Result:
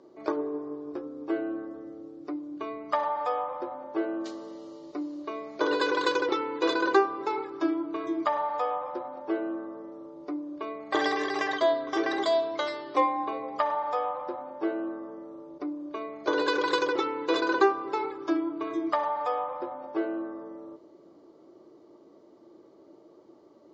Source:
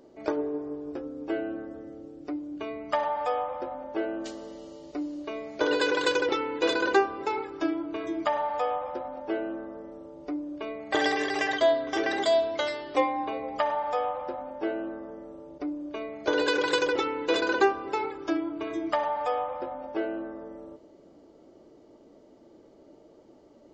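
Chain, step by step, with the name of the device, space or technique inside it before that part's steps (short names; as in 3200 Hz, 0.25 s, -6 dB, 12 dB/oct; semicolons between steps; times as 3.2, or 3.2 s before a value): car door speaker (speaker cabinet 110–7000 Hz, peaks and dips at 240 Hz -3 dB, 350 Hz +7 dB, 1100 Hz +10 dB, 2800 Hz -4 dB, 4000 Hz +3 dB); gain -3 dB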